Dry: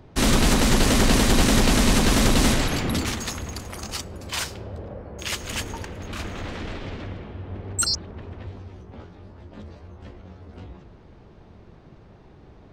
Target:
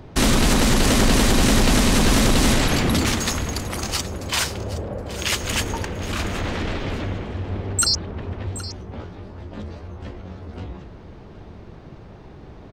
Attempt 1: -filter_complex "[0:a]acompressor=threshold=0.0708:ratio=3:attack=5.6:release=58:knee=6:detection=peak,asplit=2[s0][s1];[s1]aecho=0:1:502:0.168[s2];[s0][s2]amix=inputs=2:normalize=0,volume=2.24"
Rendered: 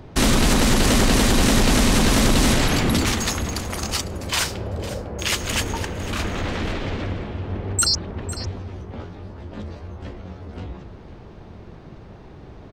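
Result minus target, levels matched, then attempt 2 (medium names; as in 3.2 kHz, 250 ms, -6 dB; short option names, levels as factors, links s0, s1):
echo 268 ms early
-filter_complex "[0:a]acompressor=threshold=0.0708:ratio=3:attack=5.6:release=58:knee=6:detection=peak,asplit=2[s0][s1];[s1]aecho=0:1:770:0.168[s2];[s0][s2]amix=inputs=2:normalize=0,volume=2.24"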